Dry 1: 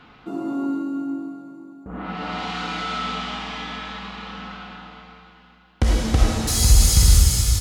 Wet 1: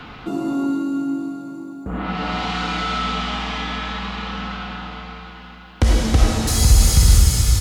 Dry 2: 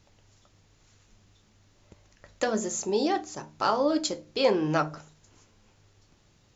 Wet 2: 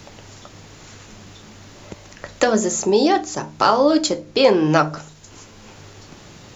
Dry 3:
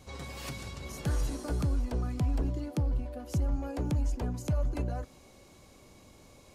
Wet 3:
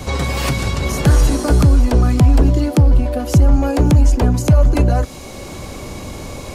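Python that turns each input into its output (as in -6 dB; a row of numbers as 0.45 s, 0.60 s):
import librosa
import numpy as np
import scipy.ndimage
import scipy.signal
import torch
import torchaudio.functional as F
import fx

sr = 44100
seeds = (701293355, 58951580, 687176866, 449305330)

y = fx.band_squash(x, sr, depth_pct=40)
y = y * 10.0 ** (-1.5 / 20.0) / np.max(np.abs(y))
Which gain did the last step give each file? +3.5 dB, +10.5 dB, +18.5 dB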